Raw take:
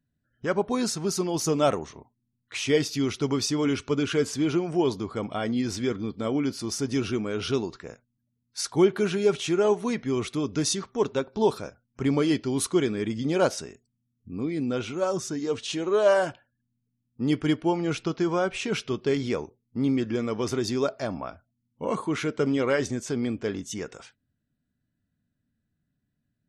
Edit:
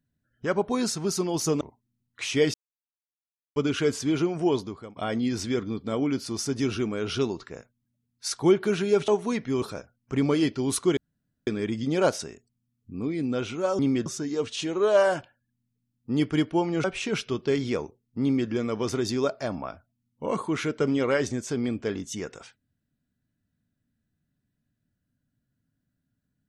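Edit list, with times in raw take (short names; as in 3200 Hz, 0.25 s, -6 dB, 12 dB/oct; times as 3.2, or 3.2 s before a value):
1.61–1.94 cut
2.87–3.89 mute
4.84–5.29 fade out, to -23.5 dB
9.41–9.66 cut
10.2–11.5 cut
12.85 insert room tone 0.50 s
17.95–18.43 cut
19.81–20.08 copy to 15.17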